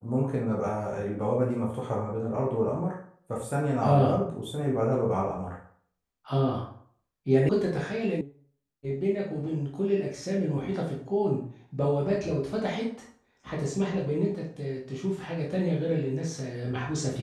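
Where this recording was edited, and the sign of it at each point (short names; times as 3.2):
7.49 sound cut off
8.21 sound cut off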